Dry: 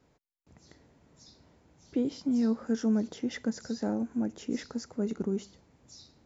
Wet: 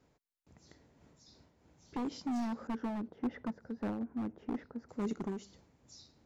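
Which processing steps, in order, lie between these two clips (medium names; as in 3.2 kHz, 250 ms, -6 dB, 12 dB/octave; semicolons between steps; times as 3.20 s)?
2.67–4.89 s: low-pass 1.3 kHz 12 dB/octave; wavefolder -25.5 dBFS; random flutter of the level, depth 65%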